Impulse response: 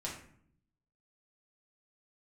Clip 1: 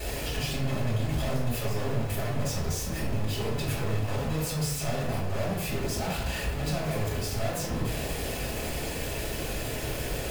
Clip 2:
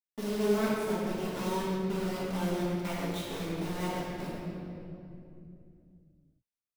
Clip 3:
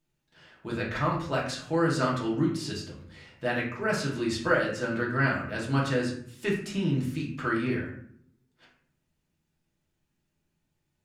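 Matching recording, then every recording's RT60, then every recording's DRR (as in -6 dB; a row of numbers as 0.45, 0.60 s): 3; 0.85, 2.7, 0.60 s; -9.5, -9.5, -4.5 dB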